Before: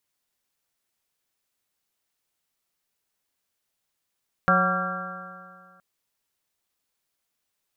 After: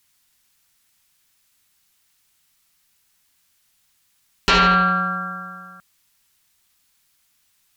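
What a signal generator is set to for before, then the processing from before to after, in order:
stretched partials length 1.32 s, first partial 181 Hz, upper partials -15/-2/-2.5/-16.5/-0.5/4.5/-2.5 dB, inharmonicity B 0.0036, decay 2.05 s, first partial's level -22.5 dB
bell 490 Hz -13 dB 1.7 oct; sine folder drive 12 dB, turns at -11.5 dBFS

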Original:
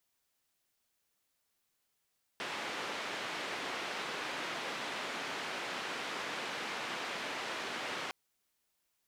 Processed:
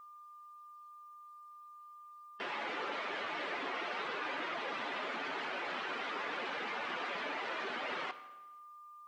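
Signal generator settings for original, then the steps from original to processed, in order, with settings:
noise band 240–2600 Hz, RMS -39.5 dBFS 5.71 s
spectral contrast raised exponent 1.9; whine 1200 Hz -51 dBFS; plate-style reverb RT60 1.1 s, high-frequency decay 0.9×, DRR 11.5 dB

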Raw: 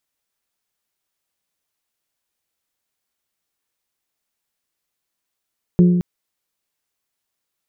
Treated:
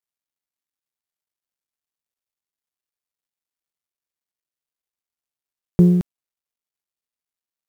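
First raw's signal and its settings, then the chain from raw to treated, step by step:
glass hit bell, length 0.22 s, lowest mode 177 Hz, modes 4, decay 1.35 s, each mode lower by 9 dB, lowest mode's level -7 dB
G.711 law mismatch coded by A; vibrato 1.7 Hz 15 cents; in parallel at -11 dB: soft clip -19 dBFS

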